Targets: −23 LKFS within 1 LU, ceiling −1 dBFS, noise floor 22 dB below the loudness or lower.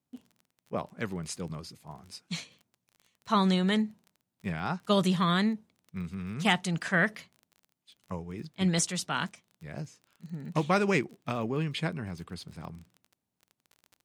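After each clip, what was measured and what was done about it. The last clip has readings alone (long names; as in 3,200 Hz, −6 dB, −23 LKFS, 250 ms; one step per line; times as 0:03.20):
crackle rate 25 per second; integrated loudness −30.5 LKFS; sample peak −11.5 dBFS; target loudness −23.0 LKFS
→ click removal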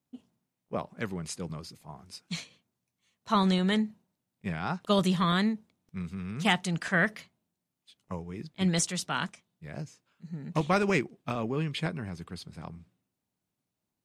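crackle rate 0.14 per second; integrated loudness −30.0 LKFS; sample peak −11.5 dBFS; target loudness −23.0 LKFS
→ level +7 dB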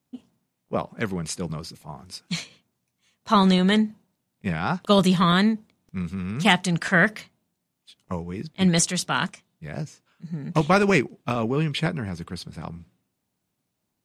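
integrated loudness −23.0 LKFS; sample peak −4.5 dBFS; background noise floor −79 dBFS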